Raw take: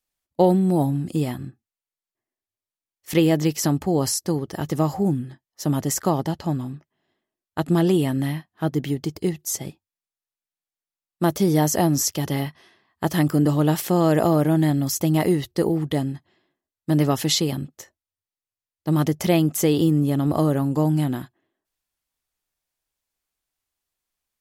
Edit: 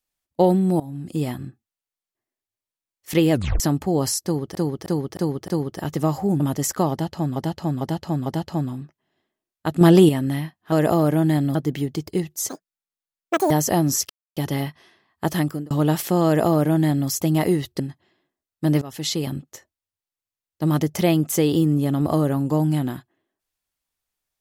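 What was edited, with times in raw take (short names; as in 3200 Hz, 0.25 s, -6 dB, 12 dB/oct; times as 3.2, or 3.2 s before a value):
0.8–1.27 fade in, from -21 dB
3.32 tape stop 0.28 s
4.24–4.55 loop, 5 plays
5.16–5.67 cut
6.18–6.63 loop, 4 plays
7.73–8.01 gain +6.5 dB
9.58–11.57 speed 196%
12.16 insert silence 0.27 s
13.13–13.5 fade out
14.05–14.88 copy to 8.64
15.59–16.05 cut
17.07–17.57 fade in, from -21 dB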